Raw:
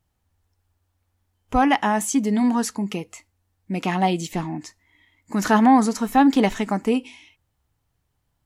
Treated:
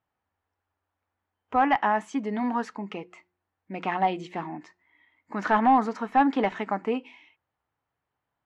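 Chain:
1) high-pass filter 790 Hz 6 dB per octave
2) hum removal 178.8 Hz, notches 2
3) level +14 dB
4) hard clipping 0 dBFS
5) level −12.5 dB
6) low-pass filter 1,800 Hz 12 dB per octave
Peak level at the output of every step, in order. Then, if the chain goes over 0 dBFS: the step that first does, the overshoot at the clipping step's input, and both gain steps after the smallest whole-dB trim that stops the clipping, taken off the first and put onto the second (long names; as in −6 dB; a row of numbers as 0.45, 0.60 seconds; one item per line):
−7.0, −7.0, +7.0, 0.0, −12.5, −12.0 dBFS
step 3, 7.0 dB
step 3 +7 dB, step 5 −5.5 dB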